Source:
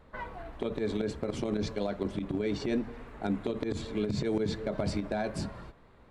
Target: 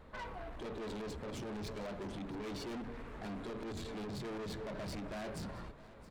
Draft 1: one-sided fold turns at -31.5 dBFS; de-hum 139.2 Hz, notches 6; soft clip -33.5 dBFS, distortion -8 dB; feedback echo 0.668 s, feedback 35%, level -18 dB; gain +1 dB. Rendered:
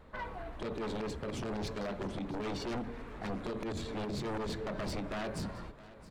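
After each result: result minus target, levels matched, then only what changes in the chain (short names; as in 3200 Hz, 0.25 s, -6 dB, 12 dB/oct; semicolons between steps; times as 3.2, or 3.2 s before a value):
one-sided fold: distortion +19 dB; soft clip: distortion -4 dB
change: one-sided fold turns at -22.5 dBFS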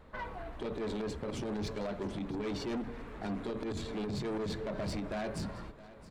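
soft clip: distortion -4 dB
change: soft clip -41.5 dBFS, distortion -4 dB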